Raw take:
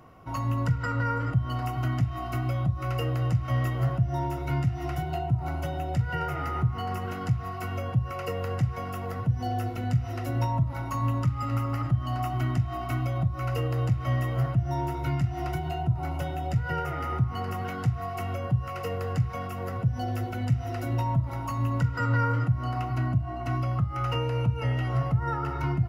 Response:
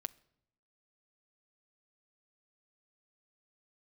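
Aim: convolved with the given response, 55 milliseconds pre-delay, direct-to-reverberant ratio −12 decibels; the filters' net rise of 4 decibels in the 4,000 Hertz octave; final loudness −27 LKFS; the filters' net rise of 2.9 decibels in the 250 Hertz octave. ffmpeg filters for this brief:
-filter_complex "[0:a]equalizer=frequency=250:width_type=o:gain=4.5,equalizer=frequency=4000:width_type=o:gain=6.5,asplit=2[link_01][link_02];[1:a]atrim=start_sample=2205,adelay=55[link_03];[link_02][link_03]afir=irnorm=-1:irlink=0,volume=14.5dB[link_04];[link_01][link_04]amix=inputs=2:normalize=0,volume=-11.5dB"

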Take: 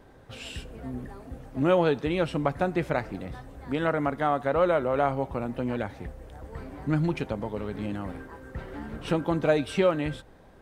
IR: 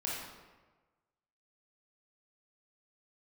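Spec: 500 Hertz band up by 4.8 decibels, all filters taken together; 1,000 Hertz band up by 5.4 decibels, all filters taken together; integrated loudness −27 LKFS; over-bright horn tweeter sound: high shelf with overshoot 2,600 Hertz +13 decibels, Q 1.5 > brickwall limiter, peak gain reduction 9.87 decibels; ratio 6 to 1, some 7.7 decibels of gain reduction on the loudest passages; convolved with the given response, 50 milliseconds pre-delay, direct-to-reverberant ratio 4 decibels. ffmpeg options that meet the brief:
-filter_complex "[0:a]equalizer=frequency=500:width_type=o:gain=4,equalizer=frequency=1000:width_type=o:gain=8,acompressor=threshold=-20dB:ratio=6,asplit=2[link_01][link_02];[1:a]atrim=start_sample=2205,adelay=50[link_03];[link_02][link_03]afir=irnorm=-1:irlink=0,volume=-7.5dB[link_04];[link_01][link_04]amix=inputs=2:normalize=0,highshelf=frequency=2600:width_type=q:width=1.5:gain=13,volume=3dB,alimiter=limit=-15dB:level=0:latency=1"

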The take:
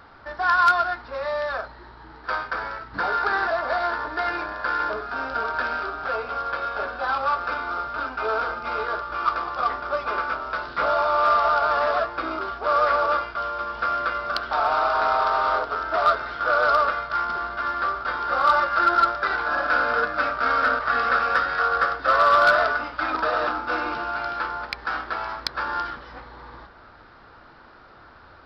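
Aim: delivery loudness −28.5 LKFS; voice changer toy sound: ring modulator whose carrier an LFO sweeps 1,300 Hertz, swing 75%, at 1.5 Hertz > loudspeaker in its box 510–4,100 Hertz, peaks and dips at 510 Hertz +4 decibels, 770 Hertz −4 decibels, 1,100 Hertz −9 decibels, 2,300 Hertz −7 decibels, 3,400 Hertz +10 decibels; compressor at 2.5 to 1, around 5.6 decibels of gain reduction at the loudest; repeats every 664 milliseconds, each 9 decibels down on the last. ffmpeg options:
ffmpeg -i in.wav -af "acompressor=threshold=-22dB:ratio=2.5,aecho=1:1:664|1328|1992|2656:0.355|0.124|0.0435|0.0152,aeval=exprs='val(0)*sin(2*PI*1300*n/s+1300*0.75/1.5*sin(2*PI*1.5*n/s))':channel_layout=same,highpass=510,equalizer=frequency=510:width_type=q:width=4:gain=4,equalizer=frequency=770:width_type=q:width=4:gain=-4,equalizer=frequency=1100:width_type=q:width=4:gain=-9,equalizer=frequency=2300:width_type=q:width=4:gain=-7,equalizer=frequency=3400:width_type=q:width=4:gain=10,lowpass=frequency=4100:width=0.5412,lowpass=frequency=4100:width=1.3066,volume=-2.5dB" out.wav

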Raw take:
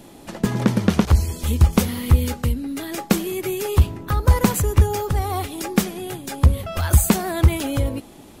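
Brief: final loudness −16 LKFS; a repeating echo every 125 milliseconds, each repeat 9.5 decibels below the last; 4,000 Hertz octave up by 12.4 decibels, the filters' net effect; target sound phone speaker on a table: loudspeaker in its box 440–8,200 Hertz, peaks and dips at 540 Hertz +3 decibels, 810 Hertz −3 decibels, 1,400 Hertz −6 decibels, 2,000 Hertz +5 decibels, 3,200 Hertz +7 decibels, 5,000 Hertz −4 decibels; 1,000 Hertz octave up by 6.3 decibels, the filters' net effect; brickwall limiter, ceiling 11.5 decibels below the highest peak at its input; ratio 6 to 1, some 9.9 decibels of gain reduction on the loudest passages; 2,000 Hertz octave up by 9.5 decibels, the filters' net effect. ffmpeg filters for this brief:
ffmpeg -i in.wav -af "equalizer=frequency=1000:width_type=o:gain=9,equalizer=frequency=2000:width_type=o:gain=4.5,equalizer=frequency=4000:width_type=o:gain=9,acompressor=threshold=-19dB:ratio=6,alimiter=limit=-14.5dB:level=0:latency=1,highpass=frequency=440:width=0.5412,highpass=frequency=440:width=1.3066,equalizer=frequency=540:width_type=q:width=4:gain=3,equalizer=frequency=810:width_type=q:width=4:gain=-3,equalizer=frequency=1400:width_type=q:width=4:gain=-6,equalizer=frequency=2000:width_type=q:width=4:gain=5,equalizer=frequency=3200:width_type=q:width=4:gain=7,equalizer=frequency=5000:width_type=q:width=4:gain=-4,lowpass=frequency=8200:width=0.5412,lowpass=frequency=8200:width=1.3066,aecho=1:1:125|250|375|500:0.335|0.111|0.0365|0.012,volume=11.5dB" out.wav

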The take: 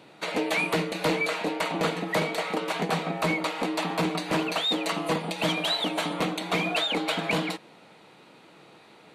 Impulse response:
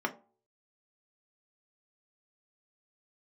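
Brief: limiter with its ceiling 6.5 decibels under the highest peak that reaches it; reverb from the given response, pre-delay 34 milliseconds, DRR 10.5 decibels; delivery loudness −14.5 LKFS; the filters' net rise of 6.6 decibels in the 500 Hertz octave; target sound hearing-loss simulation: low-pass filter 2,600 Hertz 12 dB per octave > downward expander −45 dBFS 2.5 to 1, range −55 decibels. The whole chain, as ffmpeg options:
-filter_complex "[0:a]equalizer=frequency=500:width_type=o:gain=8,alimiter=limit=-16.5dB:level=0:latency=1,asplit=2[link_01][link_02];[1:a]atrim=start_sample=2205,adelay=34[link_03];[link_02][link_03]afir=irnorm=-1:irlink=0,volume=-17.5dB[link_04];[link_01][link_04]amix=inputs=2:normalize=0,lowpass=2600,agate=range=-55dB:threshold=-45dB:ratio=2.5,volume=12dB"

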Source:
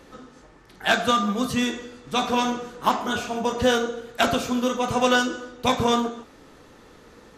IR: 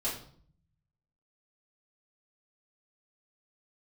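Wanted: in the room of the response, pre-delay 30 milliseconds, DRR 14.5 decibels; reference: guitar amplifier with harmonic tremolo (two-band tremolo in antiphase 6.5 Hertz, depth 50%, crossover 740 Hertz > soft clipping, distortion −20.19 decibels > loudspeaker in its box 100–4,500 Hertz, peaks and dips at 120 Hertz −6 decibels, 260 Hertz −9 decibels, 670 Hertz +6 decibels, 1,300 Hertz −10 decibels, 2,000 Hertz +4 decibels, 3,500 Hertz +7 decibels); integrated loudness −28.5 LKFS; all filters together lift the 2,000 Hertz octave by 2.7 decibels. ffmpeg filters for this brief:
-filter_complex "[0:a]equalizer=frequency=2000:width_type=o:gain=5.5,asplit=2[link_01][link_02];[1:a]atrim=start_sample=2205,adelay=30[link_03];[link_02][link_03]afir=irnorm=-1:irlink=0,volume=-19.5dB[link_04];[link_01][link_04]amix=inputs=2:normalize=0,acrossover=split=740[link_05][link_06];[link_05]aeval=exprs='val(0)*(1-0.5/2+0.5/2*cos(2*PI*6.5*n/s))':channel_layout=same[link_07];[link_06]aeval=exprs='val(0)*(1-0.5/2-0.5/2*cos(2*PI*6.5*n/s))':channel_layout=same[link_08];[link_07][link_08]amix=inputs=2:normalize=0,asoftclip=threshold=-11.5dB,highpass=100,equalizer=frequency=120:width_type=q:width=4:gain=-6,equalizer=frequency=260:width_type=q:width=4:gain=-9,equalizer=frequency=670:width_type=q:width=4:gain=6,equalizer=frequency=1300:width_type=q:width=4:gain=-10,equalizer=frequency=2000:width_type=q:width=4:gain=4,equalizer=frequency=3500:width_type=q:width=4:gain=7,lowpass=frequency=4500:width=0.5412,lowpass=frequency=4500:width=1.3066,volume=-3.5dB"

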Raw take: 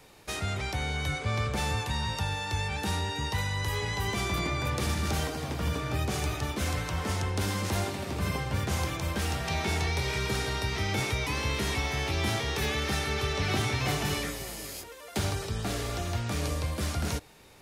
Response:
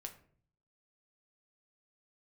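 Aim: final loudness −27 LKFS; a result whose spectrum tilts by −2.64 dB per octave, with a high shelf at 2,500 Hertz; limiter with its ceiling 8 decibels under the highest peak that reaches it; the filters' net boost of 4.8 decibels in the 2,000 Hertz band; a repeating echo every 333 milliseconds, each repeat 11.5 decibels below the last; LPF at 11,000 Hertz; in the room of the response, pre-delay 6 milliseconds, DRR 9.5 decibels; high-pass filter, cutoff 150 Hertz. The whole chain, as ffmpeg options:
-filter_complex "[0:a]highpass=150,lowpass=11000,equalizer=frequency=2000:width_type=o:gain=3.5,highshelf=frequency=2500:gain=4.5,alimiter=limit=-23.5dB:level=0:latency=1,aecho=1:1:333|666|999:0.266|0.0718|0.0194,asplit=2[link_01][link_02];[1:a]atrim=start_sample=2205,adelay=6[link_03];[link_02][link_03]afir=irnorm=-1:irlink=0,volume=-5.5dB[link_04];[link_01][link_04]amix=inputs=2:normalize=0,volume=4dB"

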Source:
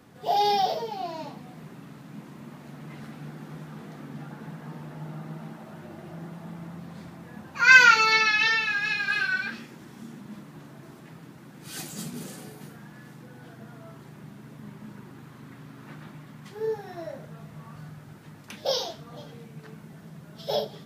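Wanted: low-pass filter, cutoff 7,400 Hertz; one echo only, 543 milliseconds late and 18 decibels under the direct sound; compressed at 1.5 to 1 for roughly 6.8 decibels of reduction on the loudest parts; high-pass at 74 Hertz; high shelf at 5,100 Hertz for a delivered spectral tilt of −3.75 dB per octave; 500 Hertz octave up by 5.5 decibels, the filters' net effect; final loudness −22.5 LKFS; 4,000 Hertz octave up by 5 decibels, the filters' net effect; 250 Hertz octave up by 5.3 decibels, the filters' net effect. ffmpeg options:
ffmpeg -i in.wav -af "highpass=74,lowpass=7400,equalizer=frequency=250:width_type=o:gain=6,equalizer=frequency=500:width_type=o:gain=5,equalizer=frequency=4000:width_type=o:gain=5,highshelf=frequency=5100:gain=3,acompressor=threshold=-27dB:ratio=1.5,aecho=1:1:543:0.126,volume=5.5dB" out.wav

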